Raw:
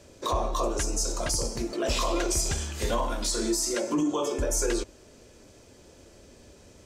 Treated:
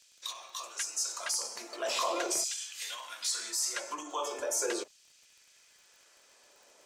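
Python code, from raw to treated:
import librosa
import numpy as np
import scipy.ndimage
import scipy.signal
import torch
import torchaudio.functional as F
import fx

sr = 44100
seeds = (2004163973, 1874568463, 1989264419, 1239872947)

y = fx.filter_lfo_highpass(x, sr, shape='saw_down', hz=0.41, low_hz=470.0, high_hz=3400.0, q=1.1)
y = fx.dmg_crackle(y, sr, seeds[0], per_s=49.0, level_db=-46.0)
y = y * librosa.db_to_amplitude(-3.0)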